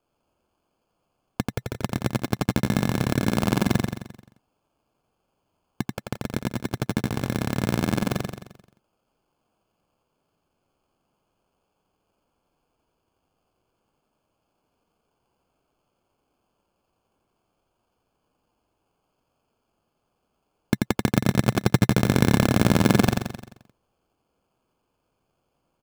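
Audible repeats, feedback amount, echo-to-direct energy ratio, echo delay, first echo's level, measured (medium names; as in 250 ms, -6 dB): 6, 52%, -2.0 dB, 87 ms, -3.5 dB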